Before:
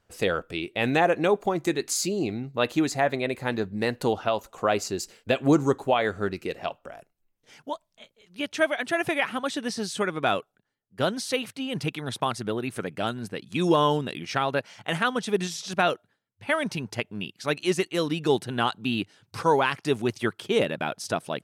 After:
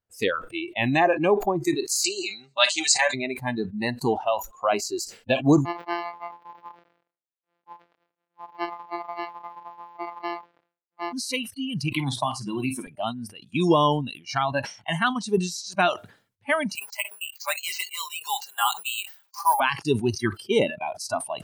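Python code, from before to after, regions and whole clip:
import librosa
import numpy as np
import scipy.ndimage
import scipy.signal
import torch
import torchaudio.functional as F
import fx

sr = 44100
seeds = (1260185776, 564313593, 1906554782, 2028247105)

y = fx.chain(x, sr, fx.ellip_lowpass(hz=8300.0, order=4, stop_db=50),
    fx.tilt_eq(slope=4.5),
    fx.comb(ms=5.1, depth=0.81), at=(2.04, 3.14))
y = fx.chain(y, sr, fx.sample_sort(block=256),
    fx.highpass(hz=440.0, slope=12),
    fx.air_absorb(metres=310.0), at=(5.65, 11.13))
y = fx.chain(y, sr, fx.doubler(ms=15.0, db=-13.0),
    fx.room_flutter(wall_m=8.5, rt60_s=0.28),
    fx.band_squash(depth_pct=100), at=(11.92, 12.87))
y = fx.chain(y, sr, fx.sample_hold(seeds[0], rate_hz=11000.0, jitter_pct=0),
    fx.highpass(hz=710.0, slope=24),
    fx.comb(ms=5.0, depth=0.58), at=(16.75, 19.6))
y = fx.noise_reduce_blind(y, sr, reduce_db=22)
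y = fx.peak_eq(y, sr, hz=91.0, db=3.0, octaves=0.98)
y = fx.sustainer(y, sr, db_per_s=140.0)
y = y * librosa.db_to_amplitude(2.0)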